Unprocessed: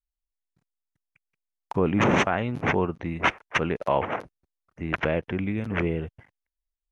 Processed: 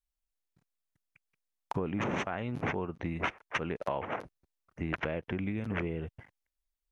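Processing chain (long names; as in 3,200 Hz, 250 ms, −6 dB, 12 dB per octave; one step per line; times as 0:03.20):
downward compressor, threshold −30 dBFS, peak gain reduction 12.5 dB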